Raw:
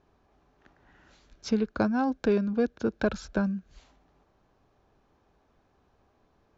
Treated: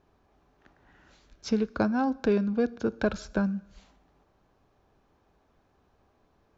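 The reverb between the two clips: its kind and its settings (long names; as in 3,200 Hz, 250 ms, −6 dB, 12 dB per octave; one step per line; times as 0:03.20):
dense smooth reverb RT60 0.81 s, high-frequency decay 0.95×, DRR 18.5 dB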